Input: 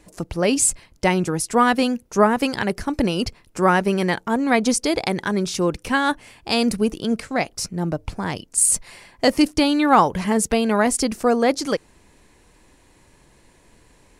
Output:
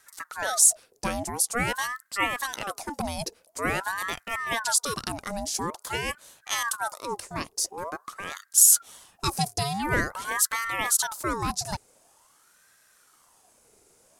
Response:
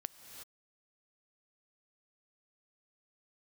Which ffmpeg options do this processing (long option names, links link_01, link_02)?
-af "aexciter=amount=4.9:drive=3.2:freq=4900,aeval=exprs='val(0)*sin(2*PI*1000*n/s+1000*0.6/0.47*sin(2*PI*0.47*n/s))':channel_layout=same,volume=-8dB"